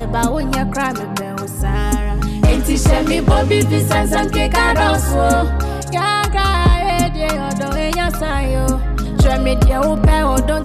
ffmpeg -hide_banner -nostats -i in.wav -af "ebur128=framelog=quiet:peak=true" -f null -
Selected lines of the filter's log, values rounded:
Integrated loudness:
  I:         -16.2 LUFS
  Threshold: -26.2 LUFS
Loudness range:
  LRA:         2.4 LU
  Threshold: -36.1 LUFS
  LRA low:   -17.2 LUFS
  LRA high:  -14.8 LUFS
True peak:
  Peak:       -3.9 dBFS